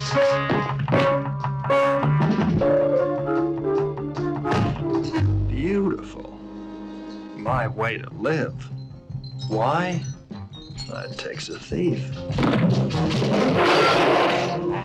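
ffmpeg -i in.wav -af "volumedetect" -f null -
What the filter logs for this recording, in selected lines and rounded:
mean_volume: -22.6 dB
max_volume: -8.7 dB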